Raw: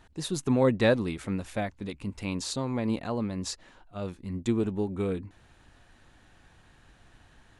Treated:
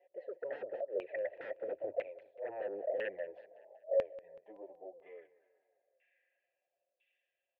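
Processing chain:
source passing by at 0:02.00, 35 m/s, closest 4.6 metres
high-pass filter 76 Hz 24 dB per octave
comb filter 3 ms, depth 34%
in parallel at −2.5 dB: downward compressor 6 to 1, threshold −51 dBFS, peak gain reduction 20.5 dB
on the sum: phaser with its sweep stopped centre 580 Hz, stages 4
gate with flip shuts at −32 dBFS, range −26 dB
band-pass filter sweep 650 Hz → 3,200 Hz, 0:03.93–0:07.04
flanger swept by the level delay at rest 5.6 ms, full sweep at −49 dBFS
sine wavefolder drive 18 dB, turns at −39.5 dBFS
formant filter e
auto-filter low-pass saw down 1 Hz 550–2,500 Hz
repeating echo 188 ms, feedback 49%, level −19 dB
level +12 dB

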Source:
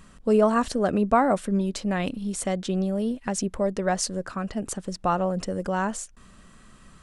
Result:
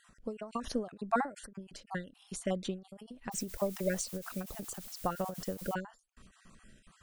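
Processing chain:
time-frequency cells dropped at random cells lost 30%
0:03.31–0:05.73: background noise blue −43 dBFS
every ending faded ahead of time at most 170 dB per second
level −5.5 dB

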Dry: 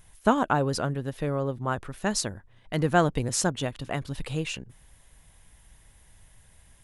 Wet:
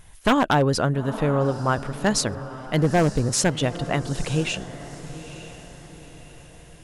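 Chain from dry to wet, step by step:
high-shelf EQ 9,200 Hz −6.5 dB
in parallel at −11 dB: hard clipping −21.5 dBFS, distortion −8 dB
0:02.78–0:03.33: on the sum: parametric band 2,300 Hz −11.5 dB 2.2 octaves
on a send: feedback delay with all-pass diffusion 905 ms, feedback 44%, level −14 dB
on the sum: wave folding −15 dBFS
level +4.5 dB

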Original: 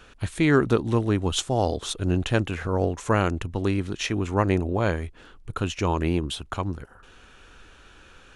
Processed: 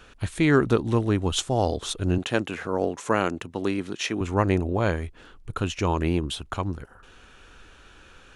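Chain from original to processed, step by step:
0:02.18–0:04.21: high-pass filter 190 Hz 12 dB per octave

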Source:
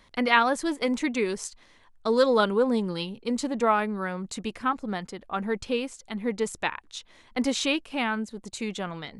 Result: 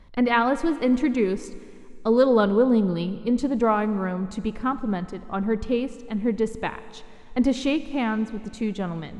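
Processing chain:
spectral tilt −3 dB per octave
four-comb reverb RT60 2.3 s, combs from 28 ms, DRR 14 dB

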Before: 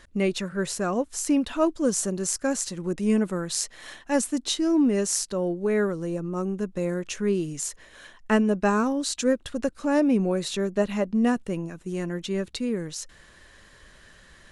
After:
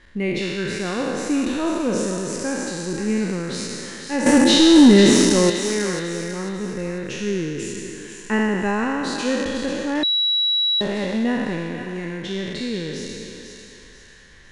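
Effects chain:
peak hold with a decay on every bin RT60 2.33 s
thirty-one-band graphic EQ 630 Hz −9 dB, 1,250 Hz −7 dB, 2,000 Hz +4 dB, 10,000 Hz +11 dB
0:04.26–0:05.50: leveller curve on the samples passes 3
high-frequency loss of the air 140 metres
feedback echo with a high-pass in the loop 495 ms, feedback 41%, high-pass 830 Hz, level −7 dB
0:10.03–0:10.81: beep over 3,900 Hz −16.5 dBFS

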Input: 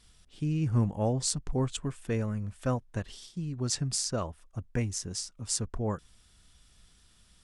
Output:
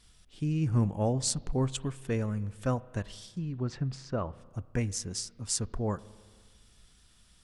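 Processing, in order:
0:03.25–0:04.45: treble cut that deepens with the level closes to 2,000 Hz, closed at −27.5 dBFS
spring reverb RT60 1.7 s, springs 30/38 ms, chirp 45 ms, DRR 18.5 dB

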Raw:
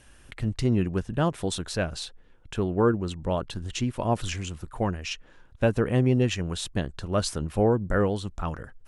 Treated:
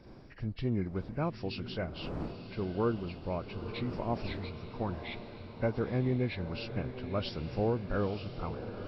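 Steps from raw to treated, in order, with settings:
hearing-aid frequency compression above 1,400 Hz 1.5 to 1
wind on the microphone 350 Hz −41 dBFS
feedback delay with all-pass diffusion 933 ms, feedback 64%, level −10.5 dB
level −8.5 dB

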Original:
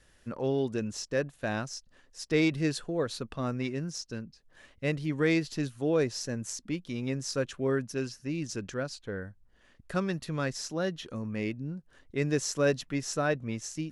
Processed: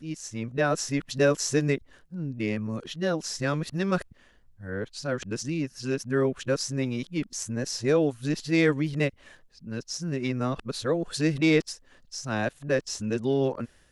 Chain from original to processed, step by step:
played backwards from end to start
automatic gain control gain up to 4 dB

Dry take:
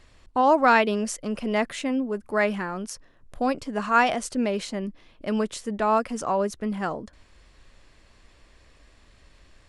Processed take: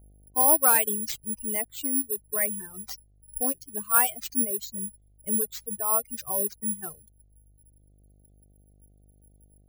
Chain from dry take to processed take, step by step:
spectral dynamics exaggerated over time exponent 2
bad sample-rate conversion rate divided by 4×, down none, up zero stuff
hum with harmonics 50 Hz, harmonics 15, −53 dBFS −8 dB per octave
reverb reduction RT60 1.7 s
in parallel at −2 dB: downward compressor, threshold −29 dBFS, peak gain reduction 19.5 dB
on the sum: level −5.5 dB

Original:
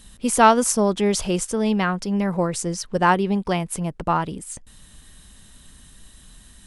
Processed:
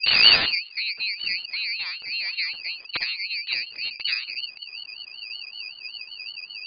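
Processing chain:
turntable start at the beginning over 0.79 s
treble cut that deepens with the level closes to 460 Hz, closed at −15 dBFS
octave-band graphic EQ 125/250/500/1,000 Hz +5/−11/+4/−12 dB
wrap-around overflow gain 14.5 dB
on a send at −14 dB: convolution reverb, pre-delay 46 ms
on the sum: voice inversion scrambler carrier 3,700 Hz
ring modulator whose carrier an LFO sweeps 960 Hz, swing 25%, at 5.3 Hz
level −1 dB

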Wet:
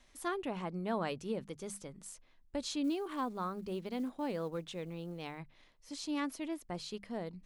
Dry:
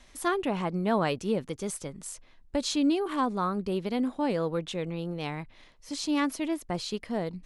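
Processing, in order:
mains-hum notches 50/100/150/200 Hz
0:02.84–0:05.39: floating-point word with a short mantissa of 4 bits
level −9 dB

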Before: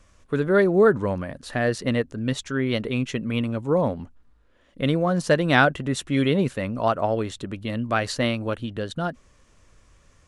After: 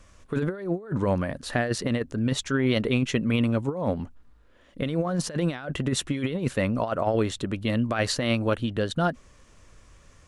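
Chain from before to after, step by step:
compressor whose output falls as the input rises −24 dBFS, ratio −0.5

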